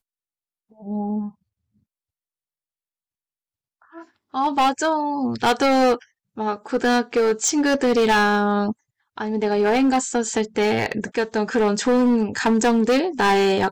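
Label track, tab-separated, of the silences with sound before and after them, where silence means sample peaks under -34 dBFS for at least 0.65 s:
1.290000	3.960000	silence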